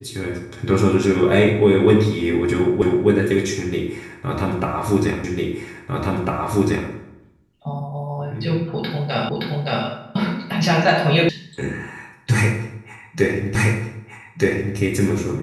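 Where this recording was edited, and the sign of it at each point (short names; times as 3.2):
2.82 repeat of the last 0.26 s
5.24 repeat of the last 1.65 s
9.29 repeat of the last 0.57 s
11.29 sound cut off
13.55 repeat of the last 1.22 s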